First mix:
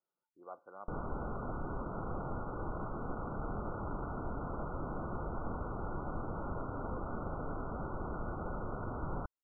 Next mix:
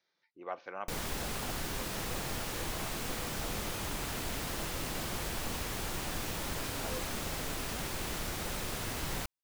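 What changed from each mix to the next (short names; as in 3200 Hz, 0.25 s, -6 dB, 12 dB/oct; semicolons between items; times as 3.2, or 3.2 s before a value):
speech +8.5 dB; master: remove brick-wall FIR low-pass 1500 Hz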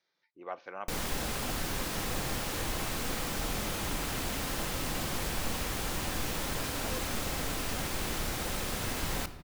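reverb: on, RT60 1.6 s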